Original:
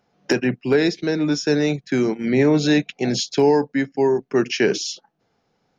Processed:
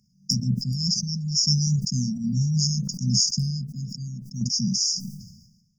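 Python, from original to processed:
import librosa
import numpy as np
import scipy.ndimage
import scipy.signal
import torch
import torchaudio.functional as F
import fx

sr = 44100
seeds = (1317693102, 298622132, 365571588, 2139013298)

y = fx.dynamic_eq(x, sr, hz=5900.0, q=1.3, threshold_db=-43.0, ratio=4.0, max_db=6, at=(0.43, 2.79))
y = fx.brickwall_bandstop(y, sr, low_hz=230.0, high_hz=4700.0)
y = fx.tremolo_shape(y, sr, shape='saw_down', hz=0.68, depth_pct=50)
y = fx.sustainer(y, sr, db_per_s=55.0)
y = y * 10.0 ** (6.5 / 20.0)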